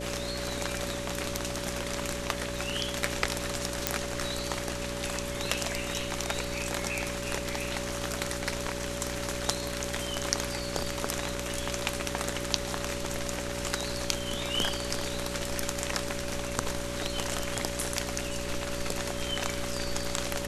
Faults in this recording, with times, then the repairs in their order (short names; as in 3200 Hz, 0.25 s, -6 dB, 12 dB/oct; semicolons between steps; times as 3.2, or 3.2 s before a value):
hum 60 Hz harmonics 7 -38 dBFS
tone 570 Hz -38 dBFS
3.87 pop -5 dBFS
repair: de-click; notch 570 Hz, Q 30; de-hum 60 Hz, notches 7